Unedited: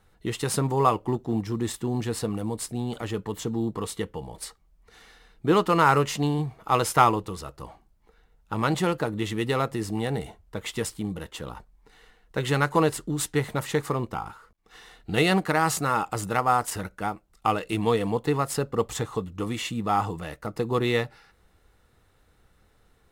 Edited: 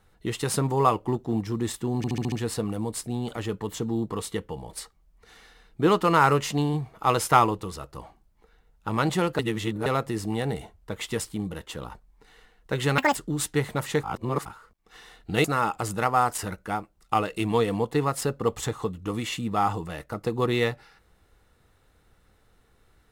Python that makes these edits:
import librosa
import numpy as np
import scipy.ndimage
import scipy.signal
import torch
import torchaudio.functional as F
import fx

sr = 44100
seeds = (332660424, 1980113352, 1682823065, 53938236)

y = fx.edit(x, sr, fx.stutter(start_s=1.97, slice_s=0.07, count=6),
    fx.reverse_span(start_s=9.04, length_s=0.47),
    fx.speed_span(start_s=12.63, length_s=0.32, speed=1.85),
    fx.reverse_span(start_s=13.83, length_s=0.42),
    fx.cut(start_s=15.24, length_s=0.53), tone=tone)